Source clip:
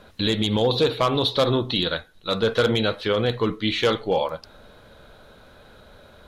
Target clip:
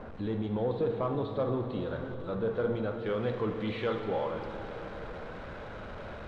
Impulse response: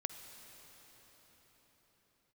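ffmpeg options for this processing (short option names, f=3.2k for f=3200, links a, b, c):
-filter_complex "[0:a]aeval=exprs='val(0)+0.5*0.0562*sgn(val(0))':c=same,asetnsamples=n=441:p=0,asendcmd='3.06 lowpass f 1900',lowpass=1.1k[a];[1:a]atrim=start_sample=2205,asetrate=61740,aresample=44100[b];[a][b]afir=irnorm=-1:irlink=0,volume=-7dB"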